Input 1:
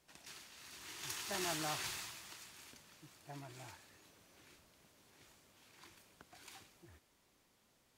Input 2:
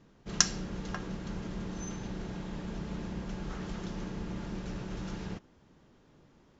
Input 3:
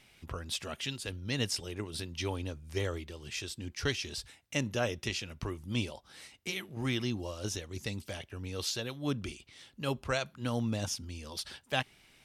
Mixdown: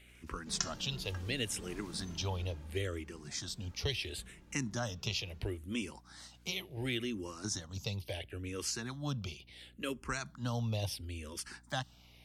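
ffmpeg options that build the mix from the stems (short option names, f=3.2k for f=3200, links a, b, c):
-filter_complex "[0:a]volume=-14dB[a];[1:a]asplit=2[b][c];[c]adelay=2.3,afreqshift=-2.7[d];[b][d]amix=inputs=2:normalize=1,adelay=200,volume=-7.5dB,afade=t=out:st=2.34:d=0.61:silence=0.266073[e];[2:a]asplit=2[f][g];[g]afreqshift=-0.72[h];[f][h]amix=inputs=2:normalize=1,volume=2dB,asplit=2[i][j];[j]apad=whole_len=351520[k];[a][k]sidechaincompress=threshold=-38dB:ratio=8:attack=27:release=559[l];[l][e][i]amix=inputs=3:normalize=0,acrossover=split=120|3000[m][n][o];[n]acompressor=threshold=-36dB:ratio=3[p];[m][p][o]amix=inputs=3:normalize=0,aeval=exprs='val(0)+0.000891*(sin(2*PI*60*n/s)+sin(2*PI*2*60*n/s)/2+sin(2*PI*3*60*n/s)/3+sin(2*PI*4*60*n/s)/4+sin(2*PI*5*60*n/s)/5)':c=same"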